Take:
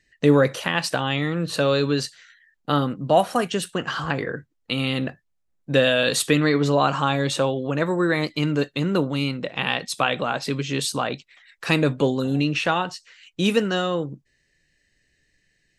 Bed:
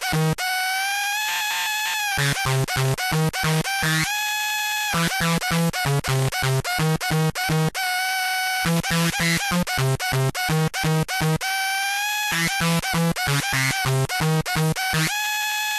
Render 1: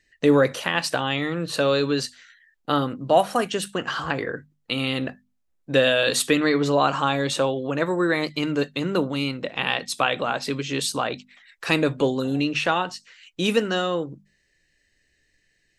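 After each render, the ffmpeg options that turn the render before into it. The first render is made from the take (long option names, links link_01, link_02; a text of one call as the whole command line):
ffmpeg -i in.wav -af "equalizer=frequency=150:width_type=o:width=0.88:gain=-4.5,bandreject=frequency=50:width_type=h:width=6,bandreject=frequency=100:width_type=h:width=6,bandreject=frequency=150:width_type=h:width=6,bandreject=frequency=200:width_type=h:width=6,bandreject=frequency=250:width_type=h:width=6" out.wav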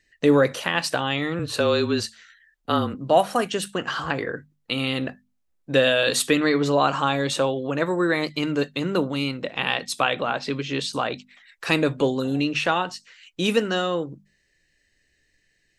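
ffmpeg -i in.wav -filter_complex "[0:a]asettb=1/sr,asplit=3[link_01][link_02][link_03];[link_01]atrim=end=1.394[link_04];[link_02]atrim=start=1.39:end=2.95,asetpts=PTS-STARTPTS,afade=type=in:duration=0.004:curve=qsin,afade=type=out:start_time=1.556:duration=0.004:curve=qsin,afreqshift=-28[link_05];[link_03]atrim=start=2.946[link_06];[link_04][link_05]acrossfade=duration=0.004:curve1=hsin:curve2=qsin[link_07];[link_07][link_06]acrossfade=duration=0.004:curve1=qsin:curve2=hsin,asettb=1/sr,asplit=3[link_08][link_09][link_10];[link_08]atrim=end=10.144[link_11];[link_09]atrim=start=10.14:end=10.93,asetpts=PTS-STARTPTS,afade=type=in:duration=0.004:curve=qsin,afade=type=out:start_time=0.786:duration=0.004:curve=qsin,lowpass=5100[link_12];[link_10]atrim=start=10.926[link_13];[link_11][link_12]acrossfade=duration=0.004:curve1=hsin:curve2=qsin[link_14];[link_14][link_13]acrossfade=duration=0.004:curve1=qsin:curve2=hsin" out.wav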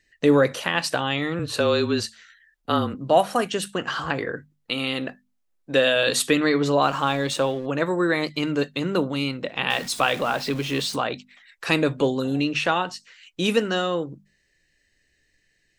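ffmpeg -i in.wav -filter_complex "[0:a]asettb=1/sr,asplit=3[link_01][link_02][link_03];[link_01]atrim=end=4.714[link_04];[link_02]atrim=start=4.71:end=5.96,asetpts=PTS-STARTPTS,afade=type=in:duration=0.004:curve=qsin,afade=type=out:start_time=1.246:duration=0.004:curve=qsin,equalizer=frequency=75:width=0.67:gain=-10.5[link_05];[link_03]atrim=start=5.956[link_06];[link_04][link_05]acrossfade=duration=0.004:curve1=hsin:curve2=qsin[link_07];[link_07][link_06]acrossfade=duration=0.004:curve1=qsin:curve2=hsin,asplit=3[link_08][link_09][link_10];[link_08]afade=type=out:start_time=6.81:duration=0.02[link_11];[link_09]aeval=exprs='sgn(val(0))*max(abs(val(0))-0.00596,0)':channel_layout=same,afade=type=in:start_time=6.81:duration=0.02,afade=type=out:start_time=7.65:duration=0.02[link_12];[link_10]afade=type=in:start_time=7.65:duration=0.02[link_13];[link_11][link_12][link_13]amix=inputs=3:normalize=0,asettb=1/sr,asplit=3[link_14][link_15][link_16];[link_14]atrim=end=9.704[link_17];[link_15]atrim=start=9.7:end=10.96,asetpts=PTS-STARTPTS,afade=type=in:duration=0.004:curve=qsin,afade=type=out:start_time=1.256:duration=0.004:curve=qsin,aeval=exprs='val(0)+0.5*0.0224*sgn(val(0))':channel_layout=same[link_18];[link_16]atrim=start=10.956[link_19];[link_17][link_18]acrossfade=duration=0.004:curve1=hsin:curve2=qsin[link_20];[link_20][link_19]acrossfade=duration=0.004:curve1=qsin:curve2=hsin" out.wav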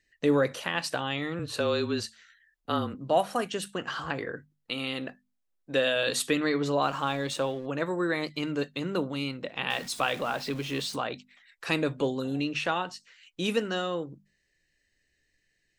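ffmpeg -i in.wav -af "volume=-6.5dB" out.wav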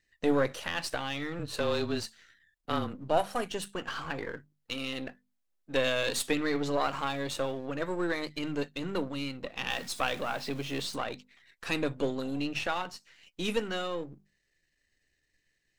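ffmpeg -i in.wav -af "aeval=exprs='if(lt(val(0),0),0.447*val(0),val(0))':channel_layout=same" out.wav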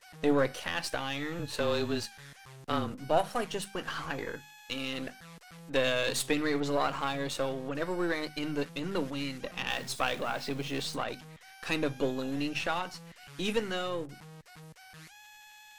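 ffmpeg -i in.wav -i bed.wav -filter_complex "[1:a]volume=-29.5dB[link_01];[0:a][link_01]amix=inputs=2:normalize=0" out.wav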